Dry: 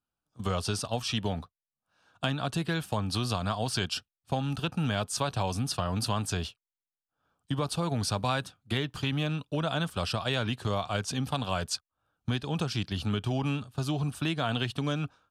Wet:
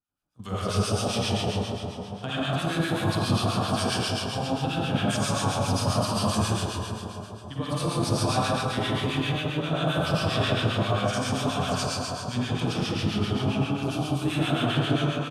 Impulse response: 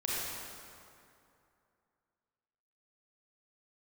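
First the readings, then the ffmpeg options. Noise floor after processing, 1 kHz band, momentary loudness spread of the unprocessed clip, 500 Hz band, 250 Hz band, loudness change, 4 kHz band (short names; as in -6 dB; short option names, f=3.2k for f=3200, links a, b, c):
-39 dBFS, +5.5 dB, 4 LU, +6.0 dB, +5.5 dB, +4.5 dB, +4.5 dB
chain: -filter_complex "[0:a]aecho=1:1:81.63|137:0.631|0.562[a];[1:a]atrim=start_sample=2205,asetrate=30429,aresample=44100[b];[a][b]afir=irnorm=-1:irlink=0,acrossover=split=1200[c][d];[c]aeval=exprs='val(0)*(1-0.7/2+0.7/2*cos(2*PI*7.5*n/s))':c=same[e];[d]aeval=exprs='val(0)*(1-0.7/2-0.7/2*cos(2*PI*7.5*n/s))':c=same[f];[e][f]amix=inputs=2:normalize=0,volume=-3dB"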